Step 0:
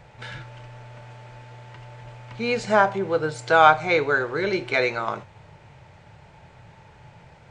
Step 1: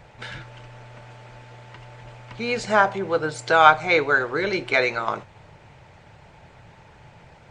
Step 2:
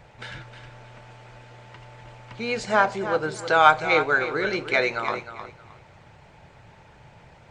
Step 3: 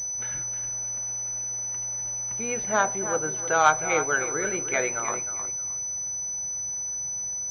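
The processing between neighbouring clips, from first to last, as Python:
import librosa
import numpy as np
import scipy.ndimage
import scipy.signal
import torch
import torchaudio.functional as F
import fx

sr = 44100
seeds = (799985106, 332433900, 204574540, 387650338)

y1 = fx.hpss(x, sr, part='percussive', gain_db=6)
y1 = y1 * librosa.db_to_amplitude(-2.0)
y2 = fx.echo_feedback(y1, sr, ms=311, feedback_pct=22, wet_db=-11)
y2 = y2 * librosa.db_to_amplitude(-2.0)
y3 = fx.pwm(y2, sr, carrier_hz=6000.0)
y3 = y3 * librosa.db_to_amplitude(-3.5)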